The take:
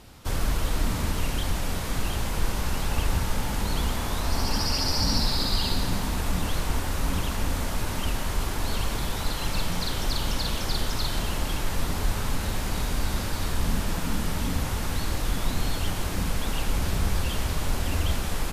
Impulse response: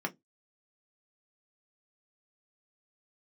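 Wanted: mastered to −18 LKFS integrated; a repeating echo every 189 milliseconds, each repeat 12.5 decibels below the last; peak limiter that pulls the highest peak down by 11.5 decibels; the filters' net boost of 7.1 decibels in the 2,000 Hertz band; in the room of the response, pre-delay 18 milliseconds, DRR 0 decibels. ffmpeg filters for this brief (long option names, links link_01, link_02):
-filter_complex "[0:a]equalizer=frequency=2000:width_type=o:gain=9,alimiter=limit=-22dB:level=0:latency=1,aecho=1:1:189|378|567:0.237|0.0569|0.0137,asplit=2[link_01][link_02];[1:a]atrim=start_sample=2205,adelay=18[link_03];[link_02][link_03]afir=irnorm=-1:irlink=0,volume=-4.5dB[link_04];[link_01][link_04]amix=inputs=2:normalize=0,volume=11.5dB"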